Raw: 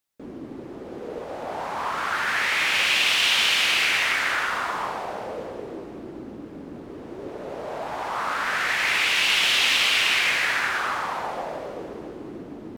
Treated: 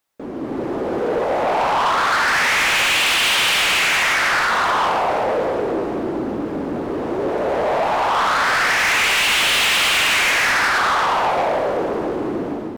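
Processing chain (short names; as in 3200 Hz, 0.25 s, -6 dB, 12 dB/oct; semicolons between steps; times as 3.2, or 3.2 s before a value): bell 830 Hz +7.5 dB 2.7 oct; AGC gain up to 7.5 dB; soft clip -18.5 dBFS, distortion -8 dB; gain +4 dB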